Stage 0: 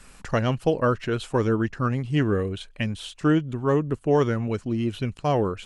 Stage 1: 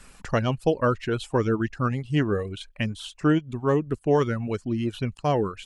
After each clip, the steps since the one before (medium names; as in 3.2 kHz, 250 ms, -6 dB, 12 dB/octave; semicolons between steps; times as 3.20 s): reverb removal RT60 0.59 s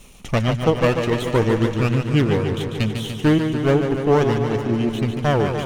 comb filter that takes the minimum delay 0.32 ms; modulated delay 146 ms, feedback 73%, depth 84 cents, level -7 dB; trim +5 dB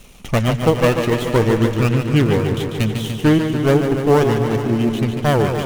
dead-time distortion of 0.078 ms; reverberation RT60 2.2 s, pre-delay 107 ms, DRR 17 dB; trim +2.5 dB